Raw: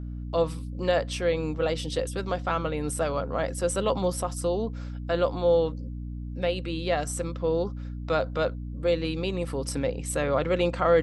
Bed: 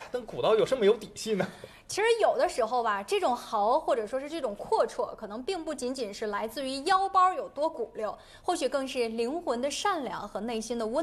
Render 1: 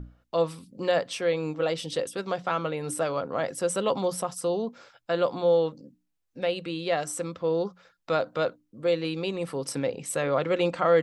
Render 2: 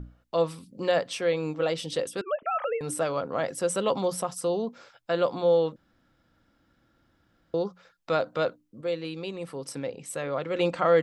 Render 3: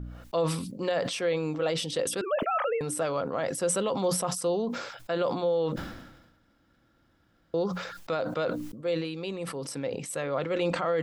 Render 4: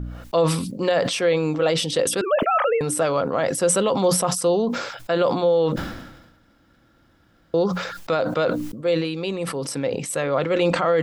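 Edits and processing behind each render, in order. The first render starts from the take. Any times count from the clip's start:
notches 60/120/180/240/300 Hz
2.21–2.81 sine-wave speech; 5.76–7.54 room tone; 8.81–10.55 gain -5 dB
limiter -18.5 dBFS, peak gain reduction 8.5 dB; sustainer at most 53 dB/s
gain +8 dB

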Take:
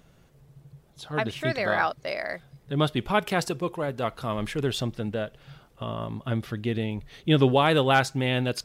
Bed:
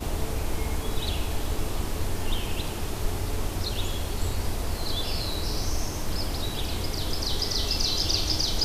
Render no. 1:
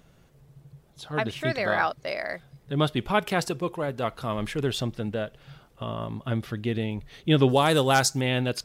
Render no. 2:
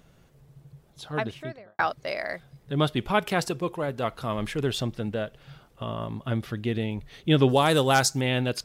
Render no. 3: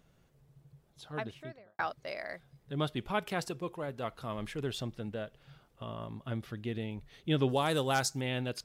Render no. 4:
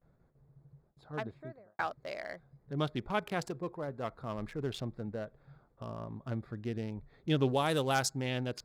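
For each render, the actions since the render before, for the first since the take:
7.49–8.21 resonant high shelf 4100 Hz +10 dB, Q 1.5
1.04–1.79 studio fade out
gain -9 dB
Wiener smoothing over 15 samples; gate with hold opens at -58 dBFS

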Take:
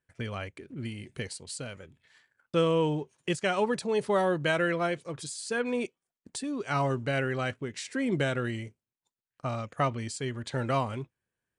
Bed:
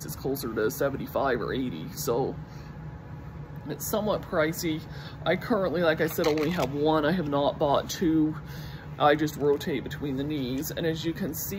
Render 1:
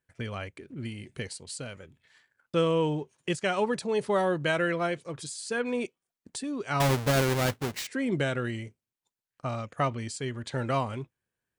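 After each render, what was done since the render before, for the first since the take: 6.8–7.87 half-waves squared off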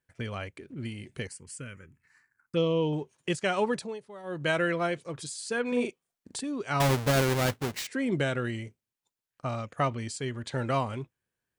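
1.27–2.93 envelope phaser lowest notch 570 Hz, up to 1600 Hz, full sweep at -23 dBFS; 3.74–4.49 dip -19.5 dB, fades 0.26 s; 5.68–6.41 doubler 41 ms -3.5 dB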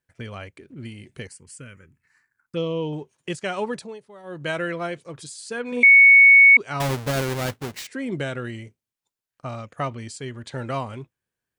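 5.83–6.57 bleep 2220 Hz -7.5 dBFS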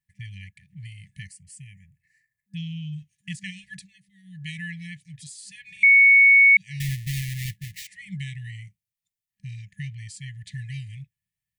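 bell 4400 Hz -5 dB 2.1 oct; FFT band-reject 200–1700 Hz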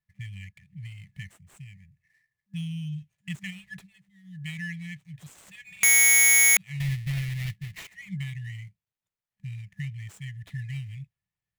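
median filter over 9 samples; wrapped overs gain 14.5 dB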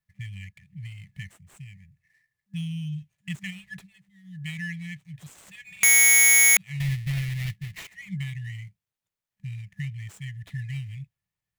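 gain +1.5 dB

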